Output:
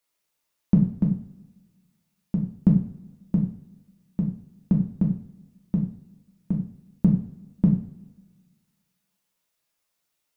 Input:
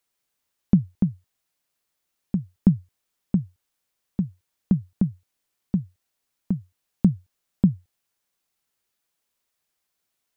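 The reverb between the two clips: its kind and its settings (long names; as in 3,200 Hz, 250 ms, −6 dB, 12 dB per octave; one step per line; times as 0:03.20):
coupled-rooms reverb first 0.47 s, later 1.6 s, from −19 dB, DRR −2 dB
level −3 dB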